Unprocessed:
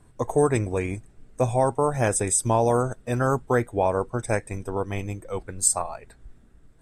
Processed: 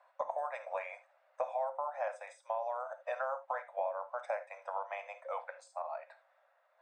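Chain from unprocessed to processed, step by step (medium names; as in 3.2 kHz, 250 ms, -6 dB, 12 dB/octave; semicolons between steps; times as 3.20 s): Chebyshev high-pass 540 Hz, order 8; compression 12:1, threshold -35 dBFS, peak gain reduction 19.5 dB; tape spacing loss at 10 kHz 41 dB; band-stop 3.1 kHz, Q 16; gated-style reverb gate 100 ms flat, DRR 9.5 dB; trim +5.5 dB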